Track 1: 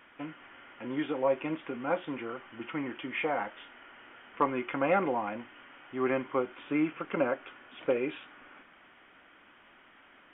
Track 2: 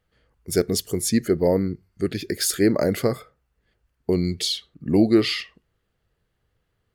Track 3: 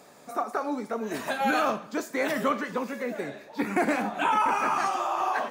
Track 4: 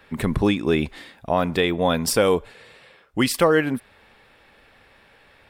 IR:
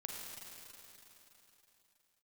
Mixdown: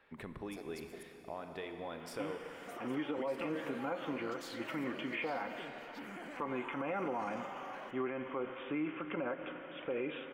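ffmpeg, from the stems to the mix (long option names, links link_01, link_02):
-filter_complex "[0:a]adelay=2000,volume=-3.5dB,asplit=2[link_01][link_02];[link_02]volume=-7dB[link_03];[1:a]tremolo=f=280:d=0.919,highpass=270,volume=-18.5dB,asplit=3[link_04][link_05][link_06];[link_04]atrim=end=1.03,asetpts=PTS-STARTPTS,afade=type=out:start_time=1.026:duration=0.004:curve=hsin[link_07];[link_05]atrim=start=1.03:end=3.79,asetpts=PTS-STARTPTS,volume=0[link_08];[link_06]atrim=start=3.79,asetpts=PTS-STARTPTS,afade=type=in:duration=0.004:curve=hsin[link_09];[link_07][link_08][link_09]concat=n=3:v=0:a=1,asplit=2[link_10][link_11];[link_11]volume=-11dB[link_12];[2:a]alimiter=level_in=3dB:limit=-24dB:level=0:latency=1:release=38,volume=-3dB,adelay=2400,volume=-8.5dB,asplit=2[link_13][link_14];[link_14]volume=-16.5dB[link_15];[3:a]bass=frequency=250:gain=-8,treble=frequency=4000:gain=-12,volume=-15dB,asplit=2[link_16][link_17];[link_17]volume=-8.5dB[link_18];[link_10][link_13][link_16]amix=inputs=3:normalize=0,acompressor=threshold=-47dB:ratio=6,volume=0dB[link_19];[4:a]atrim=start_sample=2205[link_20];[link_03][link_12][link_15][link_18]amix=inputs=4:normalize=0[link_21];[link_21][link_20]afir=irnorm=-1:irlink=0[link_22];[link_01][link_19][link_22]amix=inputs=3:normalize=0,alimiter=level_in=4.5dB:limit=-24dB:level=0:latency=1:release=102,volume=-4.5dB"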